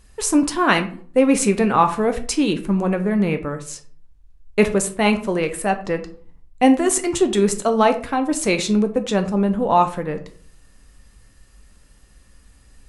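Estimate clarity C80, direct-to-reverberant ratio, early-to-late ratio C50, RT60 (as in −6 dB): 17.0 dB, 7.0 dB, 13.0 dB, 0.50 s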